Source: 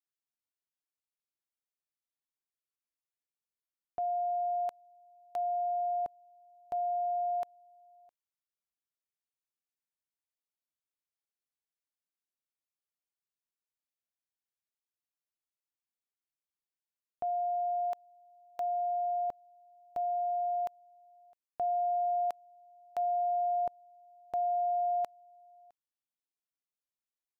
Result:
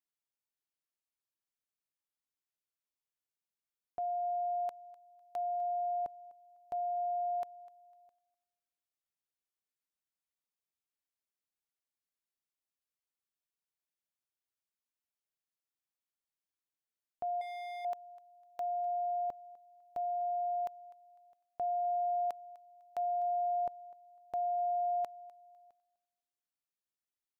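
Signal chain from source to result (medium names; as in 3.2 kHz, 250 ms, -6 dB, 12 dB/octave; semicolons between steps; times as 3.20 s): thinning echo 251 ms, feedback 26%, high-pass 480 Hz, level -19 dB; 17.41–17.85 s: hard clipper -38.5 dBFS, distortion -16 dB; trim -3 dB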